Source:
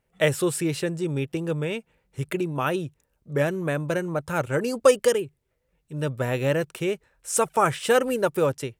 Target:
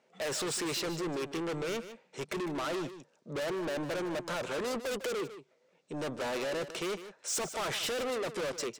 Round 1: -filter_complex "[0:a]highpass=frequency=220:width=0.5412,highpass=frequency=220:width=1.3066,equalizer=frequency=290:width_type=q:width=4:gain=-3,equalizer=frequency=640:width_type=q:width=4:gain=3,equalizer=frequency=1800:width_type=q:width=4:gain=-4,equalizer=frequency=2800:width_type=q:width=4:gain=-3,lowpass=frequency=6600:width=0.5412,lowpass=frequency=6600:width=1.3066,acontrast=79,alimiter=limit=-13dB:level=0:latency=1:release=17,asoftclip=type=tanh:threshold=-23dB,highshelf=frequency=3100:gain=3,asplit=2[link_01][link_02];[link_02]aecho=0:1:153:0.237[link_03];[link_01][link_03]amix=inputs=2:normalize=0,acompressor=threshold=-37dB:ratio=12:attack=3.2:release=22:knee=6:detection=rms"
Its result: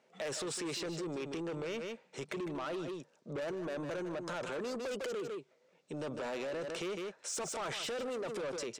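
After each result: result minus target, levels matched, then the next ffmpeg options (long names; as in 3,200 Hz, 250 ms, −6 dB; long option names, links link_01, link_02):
downward compressor: peak gain reduction +14 dB; soft clipping: distortion −6 dB
-filter_complex "[0:a]highpass=frequency=220:width=0.5412,highpass=frequency=220:width=1.3066,equalizer=frequency=290:width_type=q:width=4:gain=-3,equalizer=frequency=640:width_type=q:width=4:gain=3,equalizer=frequency=1800:width_type=q:width=4:gain=-4,equalizer=frequency=2800:width_type=q:width=4:gain=-3,lowpass=frequency=6600:width=0.5412,lowpass=frequency=6600:width=1.3066,acontrast=79,alimiter=limit=-13dB:level=0:latency=1:release=17,asoftclip=type=tanh:threshold=-23dB,highshelf=frequency=3100:gain=3,asplit=2[link_01][link_02];[link_02]aecho=0:1:153:0.237[link_03];[link_01][link_03]amix=inputs=2:normalize=0"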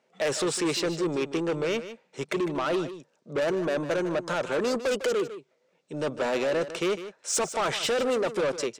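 soft clipping: distortion −6 dB
-filter_complex "[0:a]highpass=frequency=220:width=0.5412,highpass=frequency=220:width=1.3066,equalizer=frequency=290:width_type=q:width=4:gain=-3,equalizer=frequency=640:width_type=q:width=4:gain=3,equalizer=frequency=1800:width_type=q:width=4:gain=-4,equalizer=frequency=2800:width_type=q:width=4:gain=-3,lowpass=frequency=6600:width=0.5412,lowpass=frequency=6600:width=1.3066,acontrast=79,alimiter=limit=-13dB:level=0:latency=1:release=17,asoftclip=type=tanh:threshold=-33dB,highshelf=frequency=3100:gain=3,asplit=2[link_01][link_02];[link_02]aecho=0:1:153:0.237[link_03];[link_01][link_03]amix=inputs=2:normalize=0"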